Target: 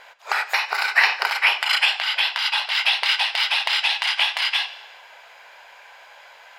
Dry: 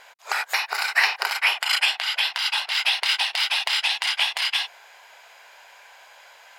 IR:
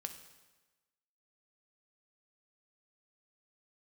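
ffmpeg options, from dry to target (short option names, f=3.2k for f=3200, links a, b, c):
-filter_complex "[0:a]asplit=2[a][b];[1:a]atrim=start_sample=2205,lowpass=5.1k[c];[b][c]afir=irnorm=-1:irlink=0,volume=4.5dB[d];[a][d]amix=inputs=2:normalize=0,volume=-3.5dB"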